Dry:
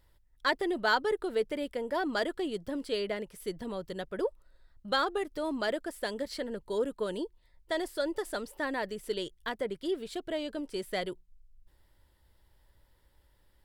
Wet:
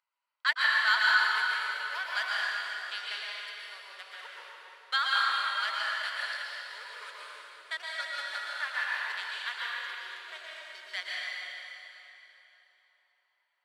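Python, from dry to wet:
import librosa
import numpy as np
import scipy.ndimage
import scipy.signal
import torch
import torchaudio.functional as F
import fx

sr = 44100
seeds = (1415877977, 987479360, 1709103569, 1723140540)

y = fx.wiener(x, sr, points=25)
y = scipy.signal.sosfilt(scipy.signal.butter(4, 1400.0, 'highpass', fs=sr, output='sos'), y)
y = fx.high_shelf(y, sr, hz=5000.0, db=-9.5)
y = fx.rev_plate(y, sr, seeds[0], rt60_s=3.4, hf_ratio=0.85, predelay_ms=105, drr_db=-6.0)
y = y * librosa.db_to_amplitude(6.0)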